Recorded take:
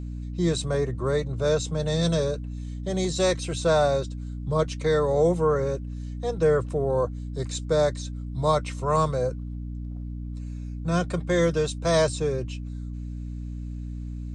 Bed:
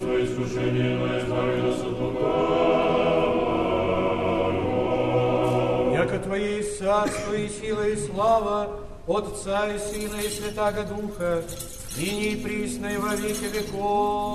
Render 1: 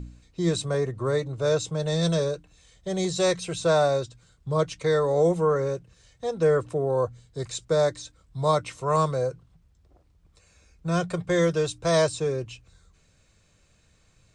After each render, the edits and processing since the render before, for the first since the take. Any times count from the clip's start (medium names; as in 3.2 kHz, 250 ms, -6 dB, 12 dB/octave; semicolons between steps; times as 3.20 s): de-hum 60 Hz, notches 5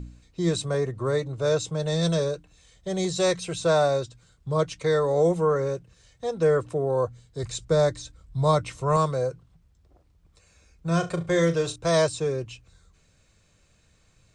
7.43–8.97 s: bass shelf 130 Hz +11 dB; 10.87–11.76 s: flutter echo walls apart 6.2 m, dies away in 0.22 s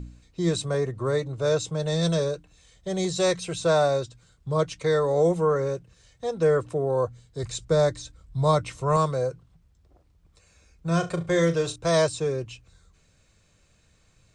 no audible change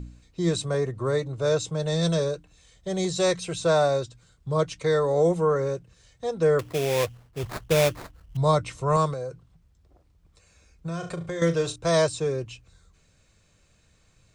6.59–8.37 s: sample-rate reducer 3 kHz, jitter 20%; 9.13–11.42 s: compression, threshold -28 dBFS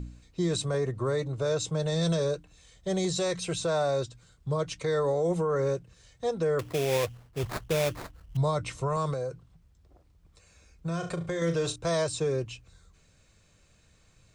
peak limiter -19.5 dBFS, peak gain reduction 9 dB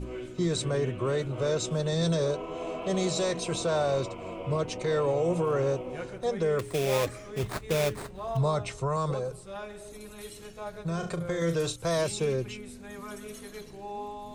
add bed -15 dB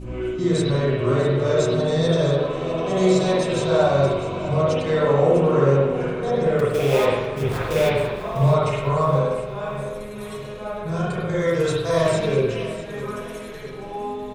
feedback delay 650 ms, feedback 47%, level -14 dB; spring tank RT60 1.1 s, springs 43/51 ms, chirp 60 ms, DRR -8 dB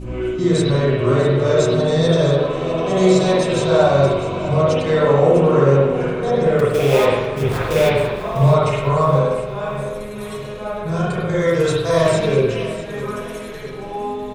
trim +4 dB; peak limiter -3 dBFS, peak gain reduction 1.5 dB